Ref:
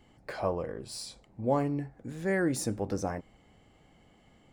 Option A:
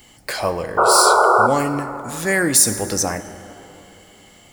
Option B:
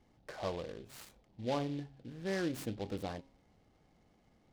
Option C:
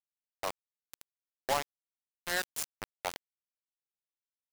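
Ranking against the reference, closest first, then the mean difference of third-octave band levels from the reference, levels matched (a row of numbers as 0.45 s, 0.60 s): B, A, C; 4.0 dB, 9.0 dB, 17.0 dB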